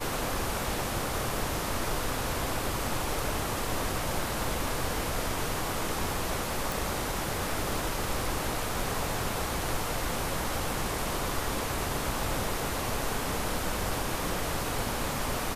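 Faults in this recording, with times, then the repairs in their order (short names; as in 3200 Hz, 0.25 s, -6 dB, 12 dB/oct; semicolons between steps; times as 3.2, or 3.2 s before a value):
6.72 pop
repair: de-click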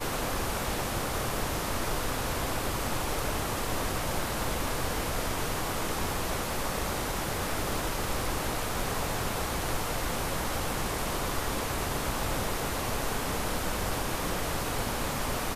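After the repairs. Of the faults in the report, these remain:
none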